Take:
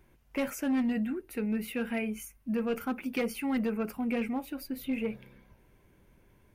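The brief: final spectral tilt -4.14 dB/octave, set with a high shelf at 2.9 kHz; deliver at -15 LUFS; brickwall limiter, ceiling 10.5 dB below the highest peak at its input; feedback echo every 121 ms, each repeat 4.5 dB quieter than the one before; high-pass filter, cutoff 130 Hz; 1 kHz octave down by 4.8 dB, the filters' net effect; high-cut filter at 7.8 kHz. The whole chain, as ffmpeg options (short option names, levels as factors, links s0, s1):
-af "highpass=130,lowpass=7800,equalizer=f=1000:t=o:g=-8,highshelf=f=2900:g=6.5,alimiter=level_in=2:limit=0.0631:level=0:latency=1,volume=0.501,aecho=1:1:121|242|363|484|605|726|847|968|1089:0.596|0.357|0.214|0.129|0.0772|0.0463|0.0278|0.0167|0.01,volume=11.9"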